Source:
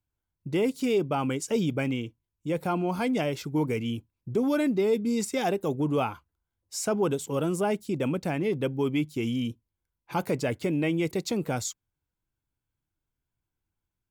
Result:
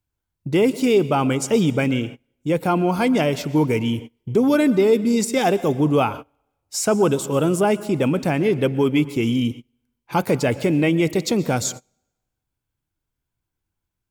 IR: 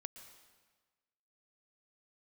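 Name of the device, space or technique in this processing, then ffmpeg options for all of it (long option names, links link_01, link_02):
keyed gated reverb: -filter_complex "[0:a]asplit=3[link_01][link_02][link_03];[1:a]atrim=start_sample=2205[link_04];[link_02][link_04]afir=irnorm=-1:irlink=0[link_05];[link_03]apad=whole_len=621908[link_06];[link_05][link_06]sidechaingate=range=-27dB:threshold=-42dB:ratio=16:detection=peak,volume=2.5dB[link_07];[link_01][link_07]amix=inputs=2:normalize=0,volume=3.5dB"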